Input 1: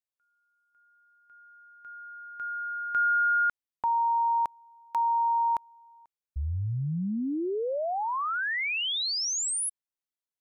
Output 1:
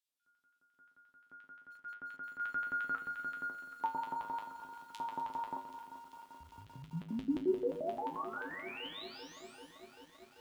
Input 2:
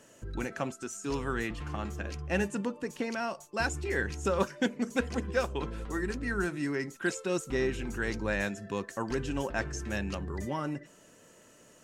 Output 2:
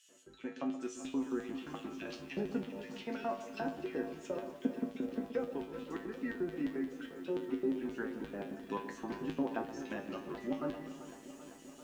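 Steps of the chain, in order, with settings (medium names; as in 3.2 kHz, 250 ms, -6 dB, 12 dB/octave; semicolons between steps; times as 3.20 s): low-pass that closes with the level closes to 660 Hz, closed at -26.5 dBFS; treble shelf 2.7 kHz +4 dB; Schroeder reverb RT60 2.5 s, combs from 29 ms, DRR 14 dB; LFO high-pass square 5.7 Hz 260–3200 Hz; feedback comb 53 Hz, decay 0.28 s, harmonics odd, mix 90%; gain riding within 4 dB 2 s; echo whose repeats swap between lows and highs 125 ms, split 1.2 kHz, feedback 57%, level -11 dB; bit-crushed delay 390 ms, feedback 80%, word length 10-bit, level -13.5 dB; trim +2.5 dB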